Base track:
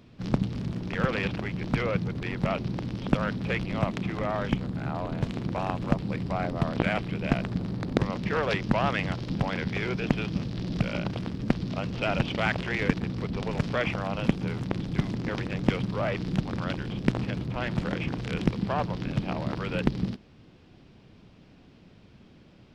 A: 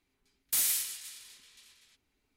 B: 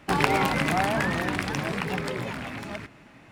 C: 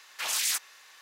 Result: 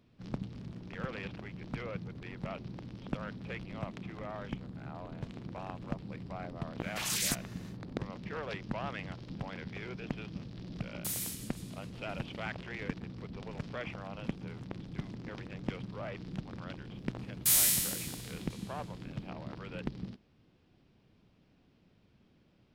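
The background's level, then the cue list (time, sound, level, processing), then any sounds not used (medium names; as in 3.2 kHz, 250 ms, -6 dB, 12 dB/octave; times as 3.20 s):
base track -12.5 dB
6.77 s: add C -4.5 dB, fades 0.10 s
10.52 s: add A -9 dB
16.93 s: add A + spectral sustain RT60 1.16 s
not used: B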